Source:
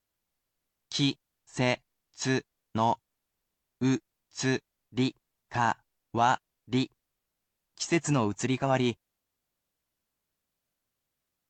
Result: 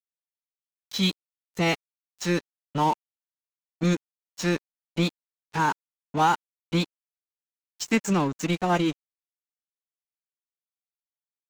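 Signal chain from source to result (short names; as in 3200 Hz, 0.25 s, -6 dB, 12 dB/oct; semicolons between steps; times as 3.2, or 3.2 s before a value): formant-preserving pitch shift +5 st; crossover distortion -39.5 dBFS; gain +4.5 dB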